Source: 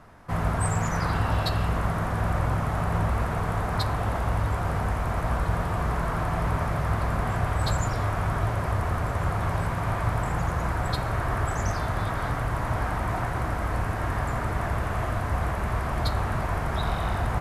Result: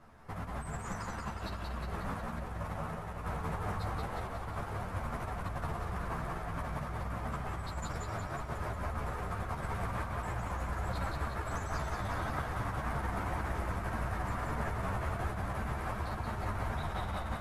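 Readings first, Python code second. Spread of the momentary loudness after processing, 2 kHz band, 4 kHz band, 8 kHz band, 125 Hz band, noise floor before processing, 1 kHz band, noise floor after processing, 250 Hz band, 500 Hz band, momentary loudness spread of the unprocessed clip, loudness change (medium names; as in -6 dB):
4 LU, -9.0 dB, -11.5 dB, -11.0 dB, -12.0 dB, -30 dBFS, -9.0 dB, -42 dBFS, -9.5 dB, -9.5 dB, 3 LU, -10.5 dB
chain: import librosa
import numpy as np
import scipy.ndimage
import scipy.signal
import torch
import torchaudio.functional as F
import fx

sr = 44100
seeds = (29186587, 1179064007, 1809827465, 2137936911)

y = fx.over_compress(x, sr, threshold_db=-28.0, ratio=-0.5)
y = fx.echo_feedback(y, sr, ms=181, feedback_pct=58, wet_db=-3.0)
y = fx.ensemble(y, sr)
y = y * 10.0 ** (-7.0 / 20.0)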